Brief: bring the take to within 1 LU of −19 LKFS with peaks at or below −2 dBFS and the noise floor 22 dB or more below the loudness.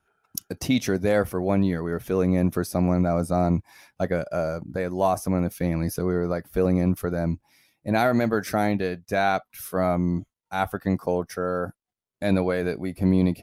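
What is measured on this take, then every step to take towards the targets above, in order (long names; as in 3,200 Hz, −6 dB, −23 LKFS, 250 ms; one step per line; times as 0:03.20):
integrated loudness −25.0 LKFS; sample peak −10.0 dBFS; target loudness −19.0 LKFS
→ level +6 dB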